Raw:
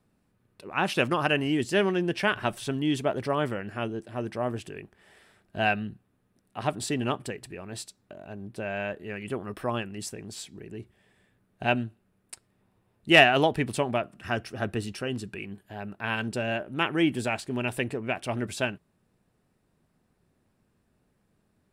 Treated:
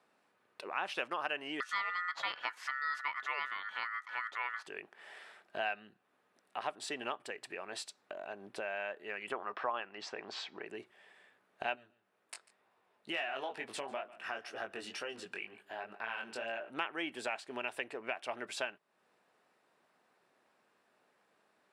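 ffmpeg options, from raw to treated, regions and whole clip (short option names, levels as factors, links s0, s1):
-filter_complex "[0:a]asettb=1/sr,asplit=3[s0][s1][s2];[s0]atrim=end=1.604[s3];[s1]atrim=start=1.6:end=4.67,asetpts=PTS-STARTPTS,afade=t=in:d=0.004:c=qsin,afade=t=out:st=3.066:d=0.004:c=qsin,highshelf=f=12000:g=-5,aeval=exprs='val(0)*sin(2*PI*1600*n/s)':c=same[s4];[s2]atrim=start=4.666[s5];[s3][s4]acrossfade=d=0.004:c1=hsin:c2=qsin[s6];[s6][s5]acrossfade=d=0.004:c1=qsin:c2=hsin,asettb=1/sr,asplit=3[s7][s8][s9];[s7]atrim=end=9.324[s10];[s8]atrim=start=9.32:end=10.67,asetpts=PTS-STARTPTS,afade=t=in:d=0.004:c=qsin,afade=t=out:st=1.346:d=0.004:c=qsin,lowpass=f=5300:w=0.5412,lowpass=f=5300:w=1.3066,equalizer=f=1000:w=0.76:g=8.5[s11];[s9]atrim=start=10.666[s12];[s10][s11]acrossfade=d=0.004:c1=hsin:c2=qsin[s13];[s13][s12]acrossfade=d=0.004:c1=qsin:c2=hsin,asettb=1/sr,asplit=3[s14][s15][s16];[s14]atrim=end=11.754[s17];[s15]atrim=start=11.75:end=16.7,asetpts=PTS-STARTPTS,afade=t=in:d=0.004:c=qsin,afade=t=out:st=4.946:d=0.004:c=qsin,flanger=delay=17.5:depth=5.1:speed=2.1,acompressor=threshold=0.0251:ratio=2:attack=3.2:release=140:knee=1:detection=peak,aecho=1:1:144:0.0891,atrim=end_sample=218295[s18];[s16]atrim=start=16.696[s19];[s17][s18]acrossfade=d=0.004:c1=hsin:c2=qsin[s20];[s20][s19]acrossfade=d=0.004:c1=qsin:c2=hsin,highpass=670,aemphasis=mode=reproduction:type=50fm,acompressor=threshold=0.00398:ratio=2.5,volume=2.24"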